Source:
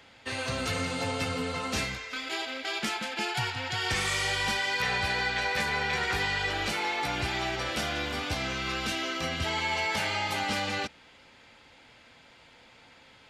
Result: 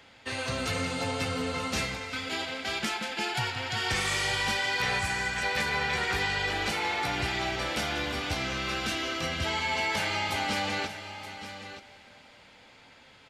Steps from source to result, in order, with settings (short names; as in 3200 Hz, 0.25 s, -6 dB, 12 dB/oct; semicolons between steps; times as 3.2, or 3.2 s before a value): 4.99–5.43 ten-band EQ 500 Hz -7 dB, 4000 Hz -10 dB, 8000 Hz +11 dB; on a send: echo 0.925 s -12 dB; on the sum: digital reverb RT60 4.7 s, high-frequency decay 1×, pre-delay 45 ms, DRR 15 dB